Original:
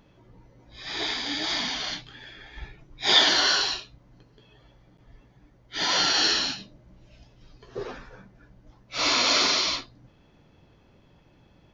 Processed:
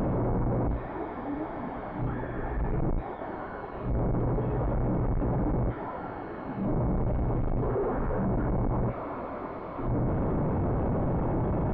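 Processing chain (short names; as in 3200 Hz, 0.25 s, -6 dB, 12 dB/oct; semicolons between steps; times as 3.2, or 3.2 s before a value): infinite clipping; pulse-width modulation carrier 2200 Hz; gain +3.5 dB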